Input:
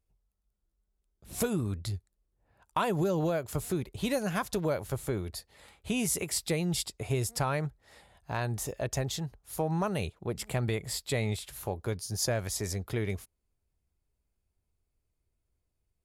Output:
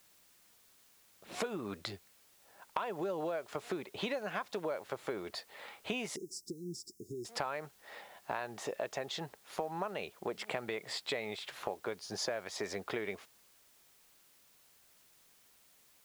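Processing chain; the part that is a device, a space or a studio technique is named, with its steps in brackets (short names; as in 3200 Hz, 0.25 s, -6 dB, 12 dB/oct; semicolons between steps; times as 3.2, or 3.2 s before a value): baby monitor (BPF 450–3100 Hz; compressor 6:1, threshold -43 dBFS, peak gain reduction 17 dB; white noise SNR 24 dB); 6.16–7.25 Chebyshev band-stop 380–5300 Hz, order 5; bell 200 Hz +3 dB 0.29 oct; gain +8.5 dB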